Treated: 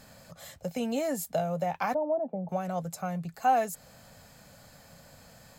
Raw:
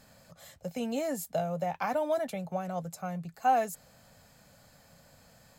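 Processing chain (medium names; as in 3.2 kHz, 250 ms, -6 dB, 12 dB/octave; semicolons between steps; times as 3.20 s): in parallel at -2 dB: compression, threshold -39 dBFS, peak gain reduction 17 dB; 1.94–2.49 s: on the sum: Chebyshev band-pass 170–850 Hz, order 3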